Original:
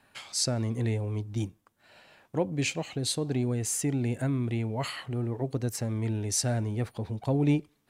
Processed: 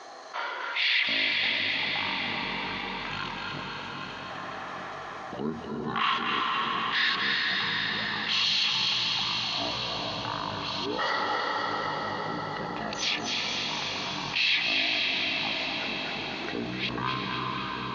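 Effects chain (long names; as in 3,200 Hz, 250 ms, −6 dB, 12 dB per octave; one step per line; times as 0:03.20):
delay that plays each chunk backwards 531 ms, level −14 dB
high-pass filter 1,300 Hz 12 dB per octave
in parallel at −0.5 dB: output level in coarse steps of 20 dB
on the sum: echo with a time of its own for lows and highs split 2,300 Hz, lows 178 ms, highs 110 ms, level −7 dB
dense smooth reverb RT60 2.3 s, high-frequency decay 0.85×, pre-delay 95 ms, DRR 2 dB
change of speed 0.44×
envelope flattener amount 50%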